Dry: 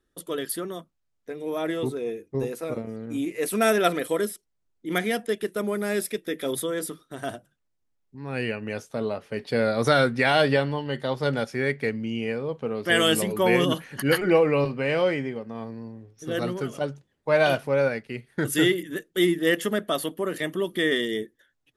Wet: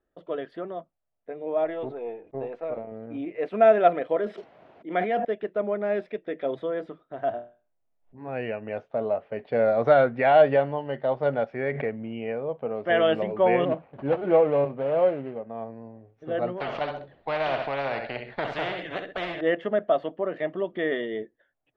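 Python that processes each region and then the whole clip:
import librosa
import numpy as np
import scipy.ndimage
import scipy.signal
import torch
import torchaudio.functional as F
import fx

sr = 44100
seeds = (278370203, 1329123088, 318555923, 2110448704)

y = fx.chain(x, sr, fx.halfwave_gain(db=-3.0),
    fx.low_shelf(hz=280.0, db=-6.5),
    fx.sustainer(db_per_s=130.0), at=(1.64, 2.92))
y = fx.chain(y, sr, fx.highpass(hz=190.0, slope=12),
    fx.sustainer(db_per_s=35.0), at=(4.16, 5.25))
y = fx.chain(y, sr, fx.room_flutter(wall_m=4.3, rt60_s=0.34),
    fx.pre_swell(db_per_s=140.0), at=(7.33, 8.28))
y = fx.chain(y, sr, fx.cvsd(bps=64000),
    fx.gaussian_blur(sigma=2.2),
    fx.pre_swell(db_per_s=31.0), at=(11.71, 12.13))
y = fx.chain(y, sr, fx.median_filter(points=25),
    fx.highpass(hz=43.0, slope=12),
    fx.gate_hold(open_db=-35.0, close_db=-40.0, hold_ms=71.0, range_db=-21, attack_ms=1.4, release_ms=100.0), at=(13.65, 15.4))
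y = fx.chain(y, sr, fx.peak_eq(hz=4200.0, db=12.0, octaves=0.36),
    fx.echo_feedback(ms=65, feedback_pct=21, wet_db=-12.5),
    fx.spectral_comp(ratio=4.0), at=(16.6, 19.41))
y = scipy.signal.sosfilt(scipy.signal.butter(4, 2800.0, 'lowpass', fs=sr, output='sos'), y)
y = fx.peak_eq(y, sr, hz=660.0, db=14.5, octaves=0.78)
y = F.gain(torch.from_numpy(y), -6.5).numpy()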